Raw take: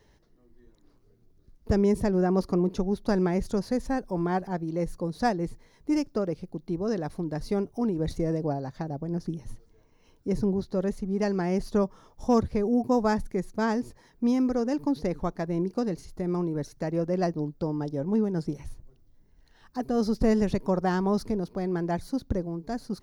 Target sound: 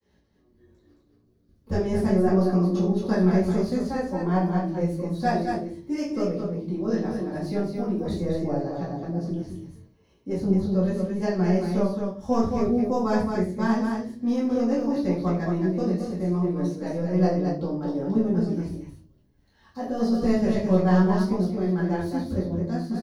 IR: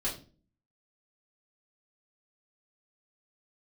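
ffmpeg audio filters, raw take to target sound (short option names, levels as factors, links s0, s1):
-filter_complex "[0:a]agate=range=0.0224:threshold=0.00158:ratio=3:detection=peak,highpass=60,acrossover=split=350|1300|2600[s0][s1][s2][s3];[s0]asoftclip=type=tanh:threshold=0.0708[s4];[s4][s1][s2][s3]amix=inputs=4:normalize=0,flanger=delay=16.5:depth=6.3:speed=0.79,aecho=1:1:69.97|218.7:0.251|0.562[s5];[1:a]atrim=start_sample=2205[s6];[s5][s6]afir=irnorm=-1:irlink=0,volume=0.841"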